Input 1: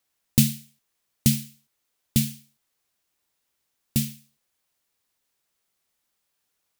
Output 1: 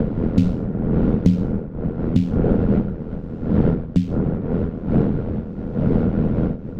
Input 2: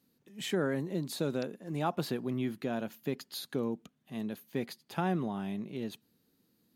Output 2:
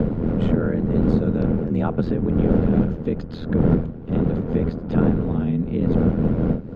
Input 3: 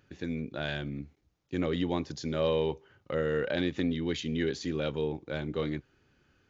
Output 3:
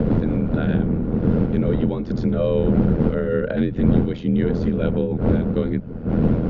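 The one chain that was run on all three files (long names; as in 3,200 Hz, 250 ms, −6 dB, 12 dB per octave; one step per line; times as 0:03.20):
wind on the microphone 320 Hz −28 dBFS
low-shelf EQ 180 Hz +8.5 dB
in parallel at 0 dB: downward compressor, threshold −30 dBFS
on the sum: ring modulation 41 Hz
high-frequency loss of the air 170 metres
hollow resonant body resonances 200/460/1,400 Hz, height 9 dB, ringing for 25 ms
multiband upward and downward compressor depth 70%
level −1.5 dB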